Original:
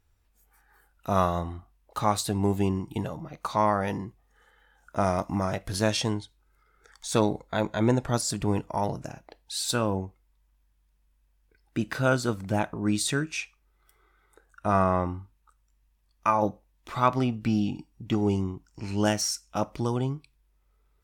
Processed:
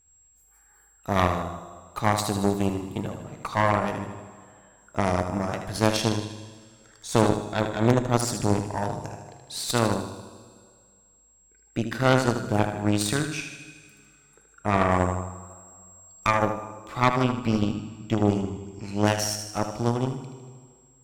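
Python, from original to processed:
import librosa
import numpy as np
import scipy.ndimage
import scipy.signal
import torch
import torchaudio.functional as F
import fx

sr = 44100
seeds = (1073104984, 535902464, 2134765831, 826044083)

p1 = x + 10.0 ** (-59.0 / 20.0) * np.sin(2.0 * np.pi * 7600.0 * np.arange(len(x)) / sr)
p2 = fx.bass_treble(p1, sr, bass_db=-1, treble_db=10, at=(14.91, 16.27))
p3 = p2 + fx.echo_feedback(p2, sr, ms=77, feedback_pct=55, wet_db=-6.5, dry=0)
p4 = fx.rev_plate(p3, sr, seeds[0], rt60_s=2.1, hf_ratio=0.95, predelay_ms=0, drr_db=10.0)
y = fx.cheby_harmonics(p4, sr, harmonics=(6, 7, 8), levels_db=(-10, -30, -18), full_scale_db=-6.0)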